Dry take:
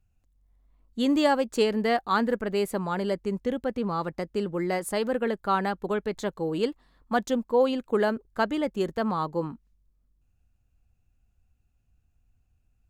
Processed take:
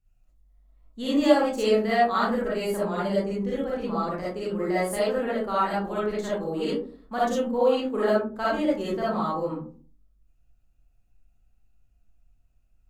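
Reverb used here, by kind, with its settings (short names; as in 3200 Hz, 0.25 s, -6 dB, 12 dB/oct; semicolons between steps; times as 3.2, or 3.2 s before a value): digital reverb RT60 0.44 s, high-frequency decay 0.35×, pre-delay 15 ms, DRR -9 dB; gain -8 dB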